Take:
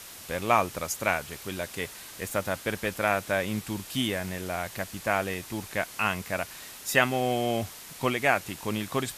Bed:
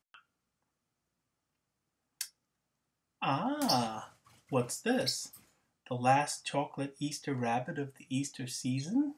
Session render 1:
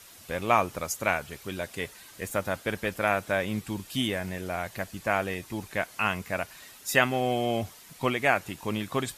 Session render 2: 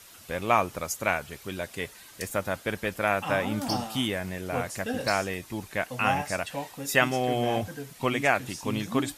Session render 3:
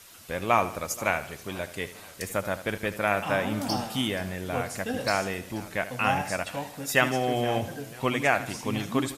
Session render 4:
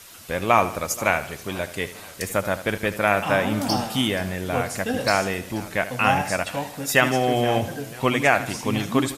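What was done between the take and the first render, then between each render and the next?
denoiser 8 dB, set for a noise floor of -45 dBFS
add bed -1.5 dB
feedback echo 77 ms, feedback 44%, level -14 dB; warbling echo 0.483 s, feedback 47%, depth 162 cents, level -20.5 dB
gain +5.5 dB; limiter -3 dBFS, peak gain reduction 2.5 dB

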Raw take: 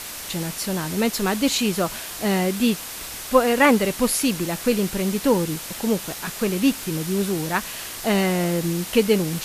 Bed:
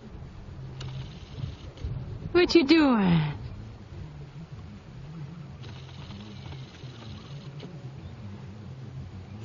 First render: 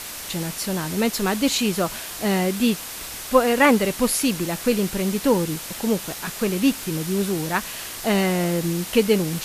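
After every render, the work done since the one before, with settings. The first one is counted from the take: nothing audible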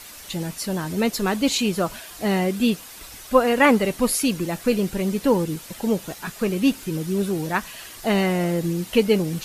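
denoiser 9 dB, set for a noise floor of -34 dBFS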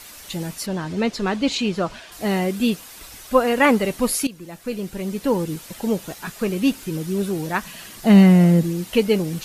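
0.66–2.12 LPF 5200 Hz; 4.27–5.56 fade in, from -16.5 dB; 7.65–8.63 bell 190 Hz +13 dB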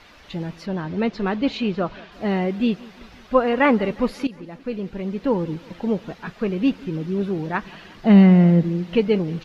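air absorption 260 m; feedback echo 0.179 s, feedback 55%, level -22 dB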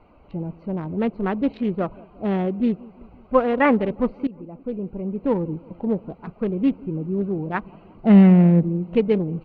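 Wiener smoothing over 25 samples; LPF 2700 Hz 12 dB/oct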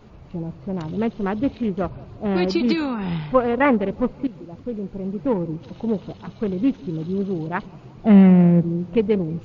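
add bed -3.5 dB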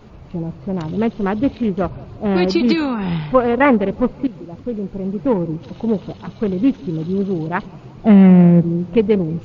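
gain +4.5 dB; limiter -2 dBFS, peak gain reduction 3 dB

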